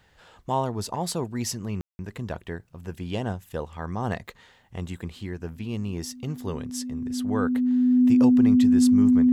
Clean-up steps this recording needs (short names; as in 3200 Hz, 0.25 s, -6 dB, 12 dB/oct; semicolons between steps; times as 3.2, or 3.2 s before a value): notch 250 Hz, Q 30; room tone fill 1.81–1.99